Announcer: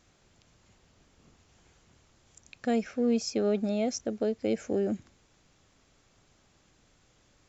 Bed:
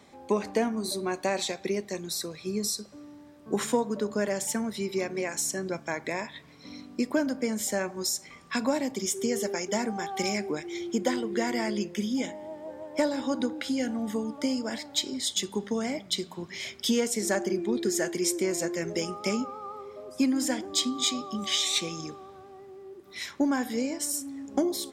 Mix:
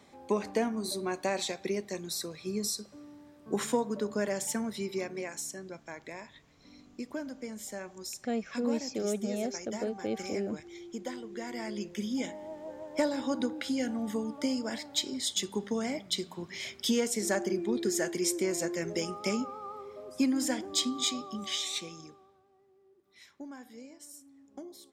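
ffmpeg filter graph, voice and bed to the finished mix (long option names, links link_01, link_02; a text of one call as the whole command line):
ffmpeg -i stem1.wav -i stem2.wav -filter_complex "[0:a]adelay=5600,volume=-5dB[link_01];[1:a]volume=6dB,afade=type=out:start_time=4.71:duration=0.95:silence=0.375837,afade=type=in:start_time=11.41:duration=0.95:silence=0.354813,afade=type=out:start_time=20.88:duration=1.54:silence=0.149624[link_02];[link_01][link_02]amix=inputs=2:normalize=0" out.wav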